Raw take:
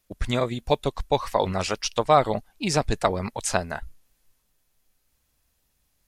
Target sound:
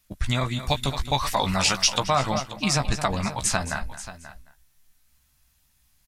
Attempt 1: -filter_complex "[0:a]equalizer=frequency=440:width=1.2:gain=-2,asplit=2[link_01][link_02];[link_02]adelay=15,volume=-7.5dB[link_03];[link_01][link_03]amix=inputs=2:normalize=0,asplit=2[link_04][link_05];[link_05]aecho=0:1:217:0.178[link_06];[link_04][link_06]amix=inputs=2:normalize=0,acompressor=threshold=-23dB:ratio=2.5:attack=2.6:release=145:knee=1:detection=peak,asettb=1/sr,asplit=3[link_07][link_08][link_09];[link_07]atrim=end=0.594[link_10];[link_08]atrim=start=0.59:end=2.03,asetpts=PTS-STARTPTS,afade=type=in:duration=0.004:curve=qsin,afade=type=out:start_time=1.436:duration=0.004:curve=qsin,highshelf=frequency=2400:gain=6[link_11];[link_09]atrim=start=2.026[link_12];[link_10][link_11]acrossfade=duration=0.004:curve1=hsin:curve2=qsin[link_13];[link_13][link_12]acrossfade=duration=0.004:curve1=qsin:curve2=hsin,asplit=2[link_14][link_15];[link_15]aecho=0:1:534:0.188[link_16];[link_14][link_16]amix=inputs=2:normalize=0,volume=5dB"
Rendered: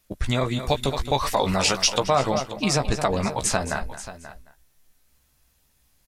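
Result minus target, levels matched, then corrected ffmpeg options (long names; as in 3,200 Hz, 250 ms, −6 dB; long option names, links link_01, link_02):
500 Hz band +4.5 dB
-filter_complex "[0:a]equalizer=frequency=440:width=1.2:gain=-13.5,asplit=2[link_01][link_02];[link_02]adelay=15,volume=-7.5dB[link_03];[link_01][link_03]amix=inputs=2:normalize=0,asplit=2[link_04][link_05];[link_05]aecho=0:1:217:0.178[link_06];[link_04][link_06]amix=inputs=2:normalize=0,acompressor=threshold=-23dB:ratio=2.5:attack=2.6:release=145:knee=1:detection=peak,asettb=1/sr,asplit=3[link_07][link_08][link_09];[link_07]atrim=end=0.594[link_10];[link_08]atrim=start=0.59:end=2.03,asetpts=PTS-STARTPTS,afade=type=in:duration=0.004:curve=qsin,afade=type=out:start_time=1.436:duration=0.004:curve=qsin,highshelf=frequency=2400:gain=6[link_11];[link_09]atrim=start=2.026[link_12];[link_10][link_11]acrossfade=duration=0.004:curve1=hsin:curve2=qsin[link_13];[link_13][link_12]acrossfade=duration=0.004:curve1=qsin:curve2=hsin,asplit=2[link_14][link_15];[link_15]aecho=0:1:534:0.188[link_16];[link_14][link_16]amix=inputs=2:normalize=0,volume=5dB"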